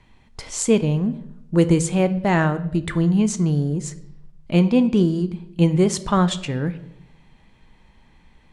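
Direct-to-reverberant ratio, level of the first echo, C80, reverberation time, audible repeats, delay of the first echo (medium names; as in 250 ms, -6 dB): 11.0 dB, no echo, 18.0 dB, 0.80 s, no echo, no echo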